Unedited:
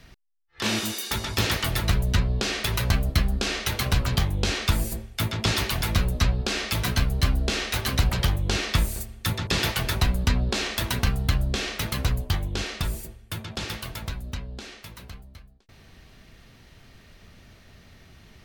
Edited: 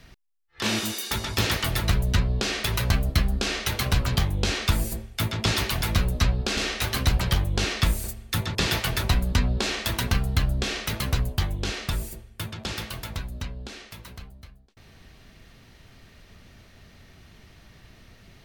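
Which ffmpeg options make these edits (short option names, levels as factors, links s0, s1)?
-filter_complex "[0:a]asplit=2[s0][s1];[s0]atrim=end=6.572[s2];[s1]atrim=start=7.488[s3];[s2][s3]acrossfade=d=0.004:c1=hsin:c2=hsin"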